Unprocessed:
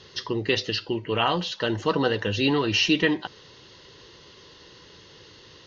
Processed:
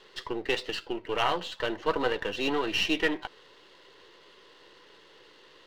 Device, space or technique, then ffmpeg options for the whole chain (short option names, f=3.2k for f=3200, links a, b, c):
crystal radio: -af "highpass=360,lowpass=3.1k,aeval=exprs='if(lt(val(0),0),0.447*val(0),val(0))':c=same"